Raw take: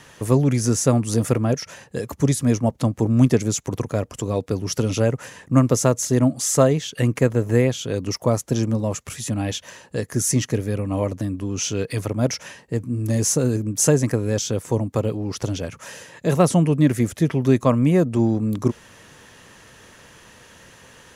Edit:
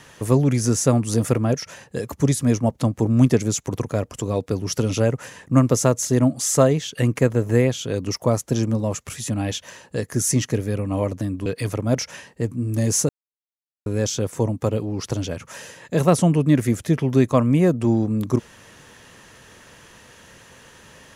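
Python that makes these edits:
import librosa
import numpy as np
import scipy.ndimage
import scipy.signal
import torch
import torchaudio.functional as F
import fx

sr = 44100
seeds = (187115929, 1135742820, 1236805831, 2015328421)

y = fx.edit(x, sr, fx.cut(start_s=11.46, length_s=0.32),
    fx.silence(start_s=13.41, length_s=0.77), tone=tone)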